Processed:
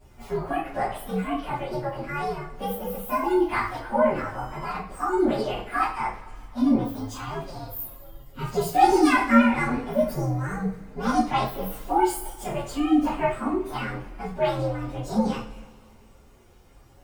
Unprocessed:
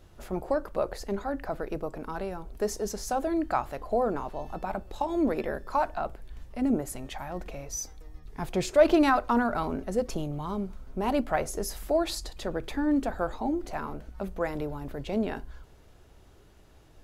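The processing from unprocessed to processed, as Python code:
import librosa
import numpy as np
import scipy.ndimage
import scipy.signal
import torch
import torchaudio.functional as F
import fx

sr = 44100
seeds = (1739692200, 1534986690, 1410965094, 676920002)

y = fx.partial_stretch(x, sr, pct=128)
y = fx.rev_double_slope(y, sr, seeds[0], early_s=0.37, late_s=2.0, knee_db=-20, drr_db=-6.5)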